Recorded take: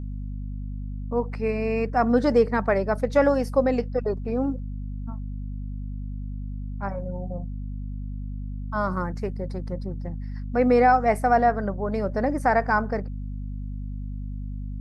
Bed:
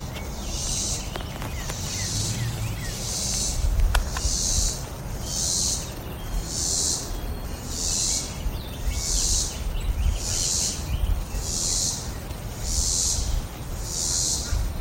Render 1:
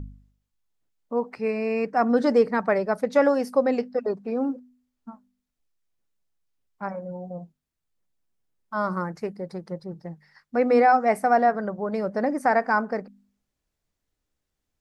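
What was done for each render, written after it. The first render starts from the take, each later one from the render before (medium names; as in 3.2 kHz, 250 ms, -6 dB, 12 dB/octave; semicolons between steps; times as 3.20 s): de-hum 50 Hz, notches 5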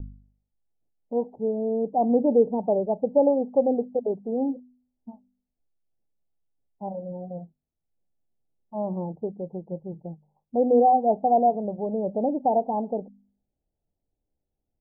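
steep low-pass 860 Hz 72 dB/octave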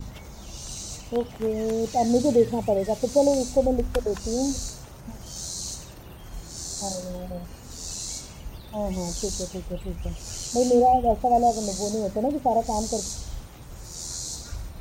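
add bed -9.5 dB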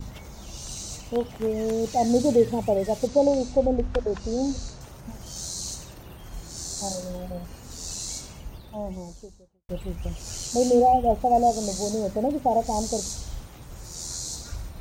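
3.07–4.81 s: distance through air 120 m; 8.21–9.69 s: studio fade out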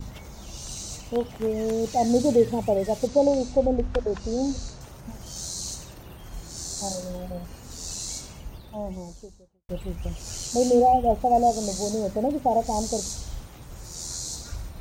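no audible change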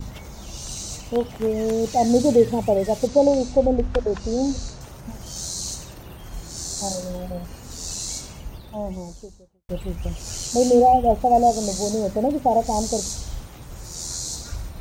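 trim +3.5 dB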